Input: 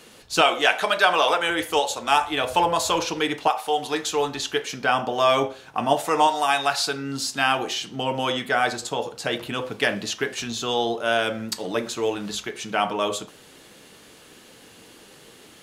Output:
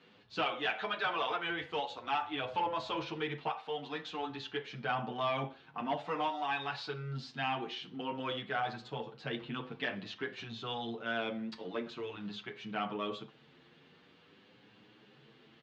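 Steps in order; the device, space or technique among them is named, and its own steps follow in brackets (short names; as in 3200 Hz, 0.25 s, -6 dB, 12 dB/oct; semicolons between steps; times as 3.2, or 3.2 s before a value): barber-pole flanger into a guitar amplifier (endless flanger 7.9 ms +0.49 Hz; soft clip -15 dBFS, distortion -17 dB; speaker cabinet 87–3800 Hz, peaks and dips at 140 Hz +8 dB, 220 Hz +4 dB, 590 Hz -4 dB); gain -9 dB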